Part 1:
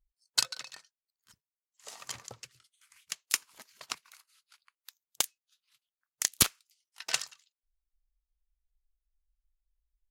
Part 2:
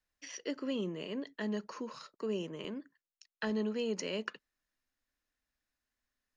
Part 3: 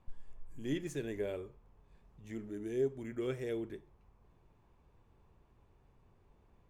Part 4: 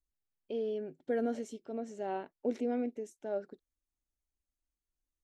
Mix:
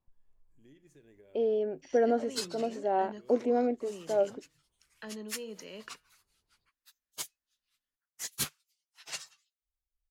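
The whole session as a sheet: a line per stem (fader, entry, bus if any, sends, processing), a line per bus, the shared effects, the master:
−8.5 dB, 2.00 s, no send, random phases in long frames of 50 ms; parametric band 150 Hz +7.5 dB 0.34 octaves
−3.5 dB, 1.60 s, no send, tuned comb filter 160 Hz, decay 0.46 s, harmonics all, mix 50%
−17.0 dB, 0.00 s, no send, downward compressor 6 to 1, threshold −38 dBFS, peak gain reduction 10 dB
0.0 dB, 0.85 s, no send, parametric band 740 Hz +10 dB 2.2 octaves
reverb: not used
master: no processing

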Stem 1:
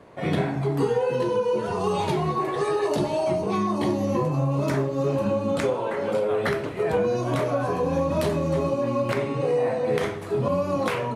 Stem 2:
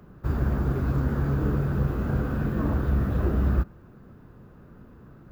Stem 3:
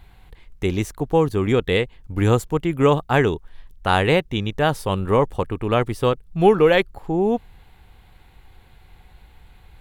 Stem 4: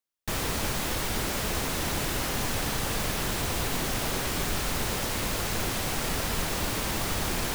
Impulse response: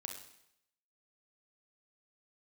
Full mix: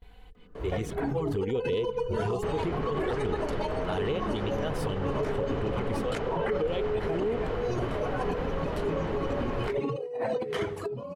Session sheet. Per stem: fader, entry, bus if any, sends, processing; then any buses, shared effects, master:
−0.5 dB, 0.55 s, no bus, no send, reverb reduction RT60 1.3 s; compressor whose output falls as the input rises −31 dBFS, ratio −0.5
−3.5 dB, 0.35 s, bus A, no send, automatic ducking −13 dB, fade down 1.75 s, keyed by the third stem
−1.5 dB, 0.00 s, bus A, no send, noise gate with hold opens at −41 dBFS; volume swells 232 ms; automatic gain control gain up to 6 dB
−1.5 dB, 2.15 s, no bus, no send, low-pass filter 1,500 Hz 12 dB per octave
bus A: 0.0 dB, flanger swept by the level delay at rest 4.3 ms, full sweep at −14 dBFS; downward compressor, threshold −28 dBFS, peak gain reduction 16.5 dB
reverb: not used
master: high-shelf EQ 8,500 Hz −7 dB; hollow resonant body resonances 440/3,000 Hz, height 11 dB, ringing for 45 ms; brickwall limiter −21 dBFS, peak gain reduction 11 dB

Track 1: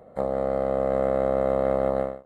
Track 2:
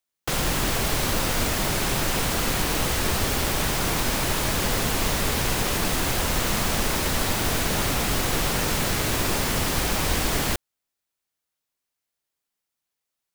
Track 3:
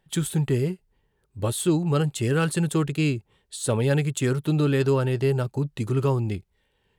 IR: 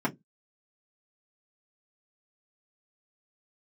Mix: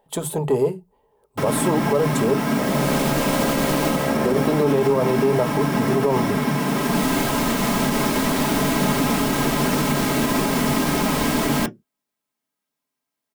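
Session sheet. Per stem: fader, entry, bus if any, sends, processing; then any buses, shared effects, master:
−3.0 dB, 2.40 s, no send, no processing
−2.5 dB, 1.10 s, send −5.5 dB, automatic ducking −14 dB, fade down 0.40 s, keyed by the third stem
−3.0 dB, 0.00 s, muted 0:02.34–0:04.25, send −15 dB, high-shelf EQ 8,200 Hz +11 dB; soft clipping −16 dBFS, distortion −20 dB; flat-topped bell 680 Hz +15 dB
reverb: on, RT60 0.15 s, pre-delay 3 ms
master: brickwall limiter −10 dBFS, peak gain reduction 8 dB

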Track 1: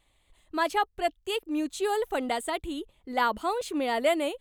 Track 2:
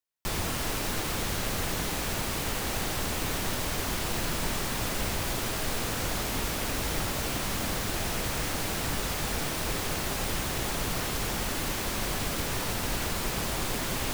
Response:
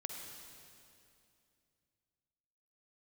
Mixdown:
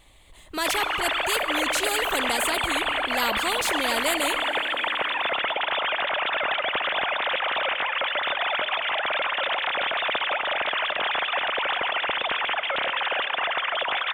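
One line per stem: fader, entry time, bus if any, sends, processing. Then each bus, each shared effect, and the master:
−3.5 dB, 0.00 s, send −11.5 dB, no processing
−4.5 dB, 0.40 s, send −6.5 dB, three sine waves on the formant tracks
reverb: on, RT60 2.6 s, pre-delay 44 ms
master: automatic gain control gain up to 4.5 dB; every bin compressed towards the loudest bin 2 to 1

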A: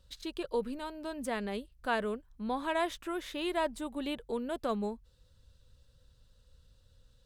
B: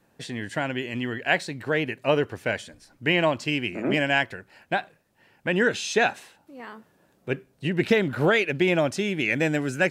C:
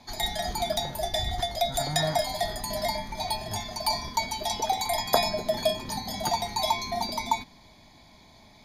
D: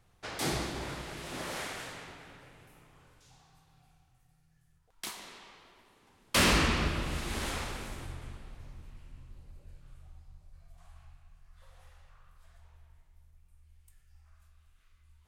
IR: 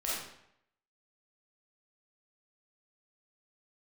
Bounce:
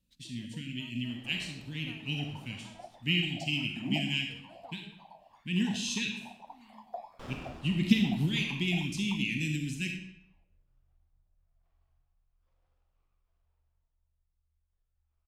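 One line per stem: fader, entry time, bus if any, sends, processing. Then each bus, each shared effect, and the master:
−19.5 dB, 0.00 s, no send, downward compressor, threshold −37 dBFS, peak gain reduction 11 dB
−1.5 dB, 0.00 s, send −3.5 dB, Chebyshev band-stop filter 240–2,800 Hz, order 3; expander for the loud parts 1.5 to 1, over −49 dBFS
−15.5 dB, 1.80 s, no send, random phases in short frames; LFO wah 1.7 Hz 690–1,500 Hz, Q 5.1
−19.5 dB, 0.85 s, send −11.5 dB, elliptic low-pass filter 3,900 Hz; windowed peak hold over 17 samples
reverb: on, RT60 0.75 s, pre-delay 5 ms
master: no processing

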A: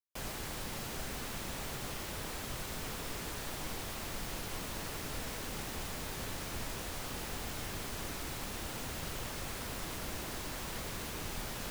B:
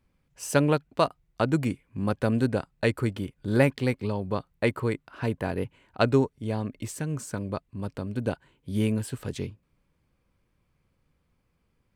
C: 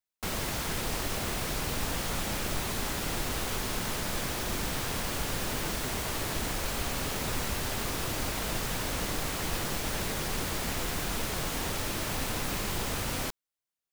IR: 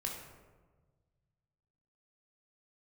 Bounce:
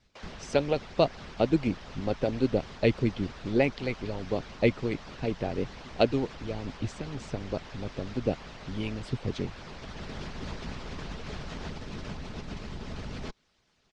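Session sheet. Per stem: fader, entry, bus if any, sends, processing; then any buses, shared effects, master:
0.0 dB, 0.00 s, no send, elliptic high-pass filter 450 Hz; comparator with hysteresis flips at −46.5 dBFS
+0.5 dB, 0.00 s, no send, flat-topped bell 1,300 Hz −10.5 dB 1.1 octaves
−12.0 dB, 0.00 s, no send, low-shelf EQ 360 Hz +7.5 dB; comb filter 4.7 ms, depth 54%; envelope flattener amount 70%; automatic ducking −8 dB, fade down 0.30 s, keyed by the second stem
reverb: not used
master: low-pass filter 5,500 Hz 24 dB per octave; low-shelf EQ 320 Hz +3.5 dB; harmonic and percussive parts rebalanced harmonic −15 dB

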